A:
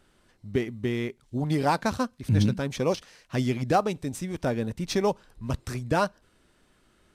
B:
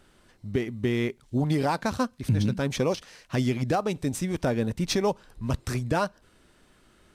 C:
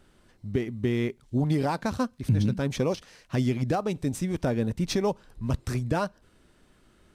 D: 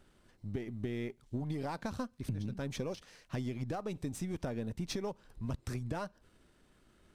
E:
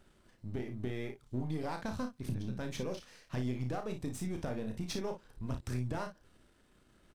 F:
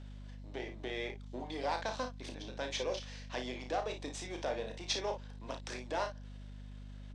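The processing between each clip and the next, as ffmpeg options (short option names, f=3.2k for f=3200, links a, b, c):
-af "alimiter=limit=-19.5dB:level=0:latency=1:release=244,volume=4dB"
-af "lowshelf=f=460:g=4.5,volume=-3.5dB"
-af "aeval=exprs='if(lt(val(0),0),0.708*val(0),val(0))':c=same,acompressor=threshold=-30dB:ratio=6,volume=-4dB"
-filter_complex "[0:a]aeval=exprs='if(lt(val(0),0),0.708*val(0),val(0))':c=same,asplit=2[a][b];[b]aecho=0:1:32|56:0.473|0.316[c];[a][c]amix=inputs=2:normalize=0"
-af "highpass=f=390:w=0.5412,highpass=f=390:w=1.3066,equalizer=f=400:t=q:w=4:g=-6,equalizer=f=1.3k:t=q:w=4:g=-7,equalizer=f=3.5k:t=q:w=4:g=4,lowpass=f=6.9k:w=0.5412,lowpass=f=6.9k:w=1.3066,aeval=exprs='val(0)+0.00224*(sin(2*PI*50*n/s)+sin(2*PI*2*50*n/s)/2+sin(2*PI*3*50*n/s)/3+sin(2*PI*4*50*n/s)/4+sin(2*PI*5*50*n/s)/5)':c=same,volume=6.5dB"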